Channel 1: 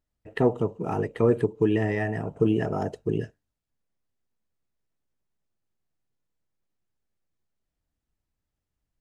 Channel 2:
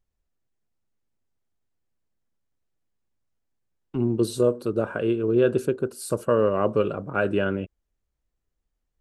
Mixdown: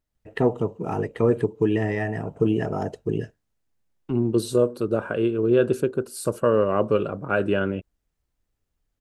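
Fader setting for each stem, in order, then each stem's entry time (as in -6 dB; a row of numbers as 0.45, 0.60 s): +1.0, +1.0 dB; 0.00, 0.15 s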